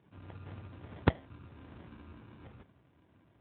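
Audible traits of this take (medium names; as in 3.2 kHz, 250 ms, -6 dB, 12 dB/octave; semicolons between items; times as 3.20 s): aliases and images of a low sample rate 1.3 kHz, jitter 0%; Speex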